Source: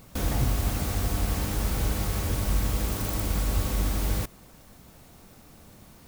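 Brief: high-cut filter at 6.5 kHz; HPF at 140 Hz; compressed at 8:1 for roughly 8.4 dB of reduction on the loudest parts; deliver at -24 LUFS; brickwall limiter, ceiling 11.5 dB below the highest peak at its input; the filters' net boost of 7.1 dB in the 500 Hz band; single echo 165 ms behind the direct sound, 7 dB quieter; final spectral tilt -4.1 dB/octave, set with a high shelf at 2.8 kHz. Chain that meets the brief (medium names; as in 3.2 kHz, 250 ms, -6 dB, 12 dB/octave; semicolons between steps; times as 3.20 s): high-pass 140 Hz; low-pass 6.5 kHz; peaking EQ 500 Hz +8.5 dB; treble shelf 2.8 kHz +5 dB; compression 8:1, threshold -31 dBFS; peak limiter -34 dBFS; delay 165 ms -7 dB; trim +19 dB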